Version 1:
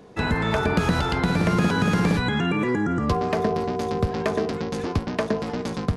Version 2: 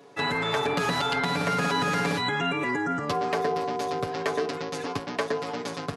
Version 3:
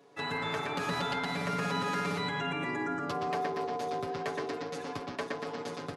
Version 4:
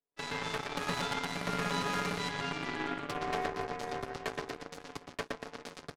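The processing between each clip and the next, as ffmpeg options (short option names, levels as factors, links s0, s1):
-af "highpass=f=540:p=1,aecho=1:1:7.1:0.94,volume=0.794"
-filter_complex "[0:a]asplit=2[s0][s1];[s1]adelay=121,lowpass=f=2800:p=1,volume=0.708,asplit=2[s2][s3];[s3]adelay=121,lowpass=f=2800:p=1,volume=0.54,asplit=2[s4][s5];[s5]adelay=121,lowpass=f=2800:p=1,volume=0.54,asplit=2[s6][s7];[s7]adelay=121,lowpass=f=2800:p=1,volume=0.54,asplit=2[s8][s9];[s9]adelay=121,lowpass=f=2800:p=1,volume=0.54,asplit=2[s10][s11];[s11]adelay=121,lowpass=f=2800:p=1,volume=0.54,asplit=2[s12][s13];[s13]adelay=121,lowpass=f=2800:p=1,volume=0.54[s14];[s0][s2][s4][s6][s8][s10][s12][s14]amix=inputs=8:normalize=0,volume=0.376"
-af "aeval=exprs='0.106*(cos(1*acos(clip(val(0)/0.106,-1,1)))-cos(1*PI/2))+0.0299*(cos(2*acos(clip(val(0)/0.106,-1,1)))-cos(2*PI/2))+0.0237*(cos(4*acos(clip(val(0)/0.106,-1,1)))-cos(4*PI/2))+0.00596*(cos(6*acos(clip(val(0)/0.106,-1,1)))-cos(6*PI/2))+0.015*(cos(7*acos(clip(val(0)/0.106,-1,1)))-cos(7*PI/2))':c=same"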